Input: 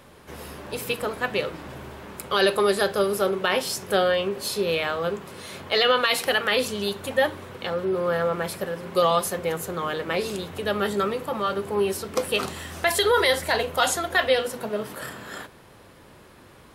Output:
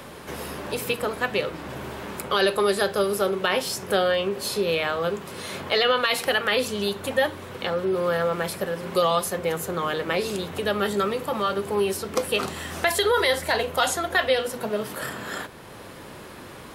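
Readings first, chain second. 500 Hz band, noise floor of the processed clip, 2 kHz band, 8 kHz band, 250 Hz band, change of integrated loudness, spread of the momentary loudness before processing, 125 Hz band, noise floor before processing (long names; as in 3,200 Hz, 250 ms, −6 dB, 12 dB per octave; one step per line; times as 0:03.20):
0.0 dB, −42 dBFS, 0.0 dB, 0.0 dB, +0.5 dB, −0.5 dB, 15 LU, +1.0 dB, −50 dBFS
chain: multiband upward and downward compressor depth 40%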